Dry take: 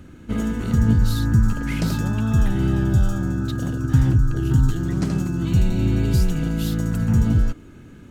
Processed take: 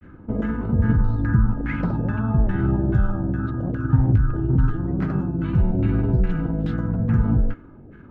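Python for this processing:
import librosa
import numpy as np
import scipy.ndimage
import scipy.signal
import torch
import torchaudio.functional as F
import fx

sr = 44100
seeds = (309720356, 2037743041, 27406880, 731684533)

y = fx.filter_lfo_lowpass(x, sr, shape='saw_down', hz=2.4, low_hz=550.0, high_hz=2000.0, q=1.9)
y = fx.granulator(y, sr, seeds[0], grain_ms=100.0, per_s=20.0, spray_ms=14.0, spread_st=0)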